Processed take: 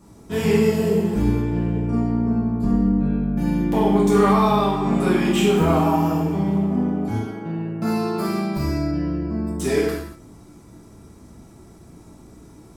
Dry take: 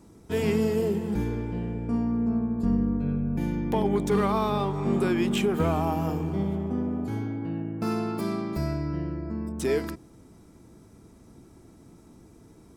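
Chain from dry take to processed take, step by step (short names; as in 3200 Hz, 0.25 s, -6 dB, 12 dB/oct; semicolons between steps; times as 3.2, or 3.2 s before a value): non-linear reverb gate 0.27 s falling, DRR -6.5 dB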